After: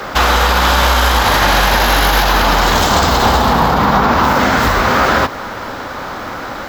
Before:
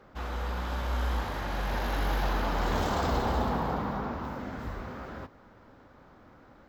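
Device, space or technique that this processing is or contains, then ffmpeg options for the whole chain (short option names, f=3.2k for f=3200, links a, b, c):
mastering chain: -filter_complex "[0:a]equalizer=f=2k:t=o:w=1.6:g=-3.5,acrossover=split=280|750[a][b][c];[a]acompressor=threshold=-30dB:ratio=4[d];[b]acompressor=threshold=-44dB:ratio=4[e];[c]acompressor=threshold=-42dB:ratio=4[f];[d][e][f]amix=inputs=3:normalize=0,acompressor=threshold=-39dB:ratio=2,tiltshelf=f=640:g=-8.5,alimiter=level_in=32.5dB:limit=-1dB:release=50:level=0:latency=1,volume=-1dB"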